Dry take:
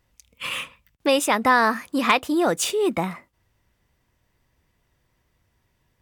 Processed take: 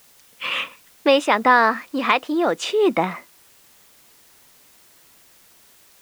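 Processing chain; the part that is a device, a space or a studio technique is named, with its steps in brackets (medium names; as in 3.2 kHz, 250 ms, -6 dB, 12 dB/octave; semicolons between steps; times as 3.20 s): dictaphone (band-pass 250–4000 Hz; level rider gain up to 9 dB; wow and flutter 22 cents; white noise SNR 30 dB); trim -1 dB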